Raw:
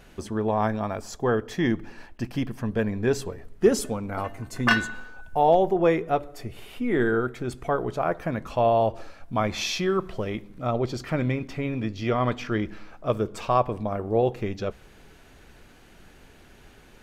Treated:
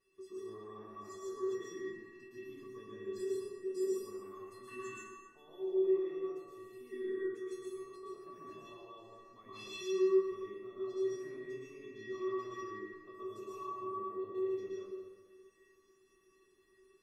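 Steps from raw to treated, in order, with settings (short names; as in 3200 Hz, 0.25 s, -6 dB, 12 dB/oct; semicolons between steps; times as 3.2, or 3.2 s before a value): de-hum 45.72 Hz, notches 29; limiter -19.5 dBFS, peak gain reduction 11.5 dB; 7.15–8.18 negative-ratio compressor -35 dBFS, ratio -0.5; resonator 380 Hz, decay 0.37 s, harmonics odd, mix 100%; plate-style reverb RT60 1.6 s, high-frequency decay 0.45×, pre-delay 0.105 s, DRR -7 dB; gain -2.5 dB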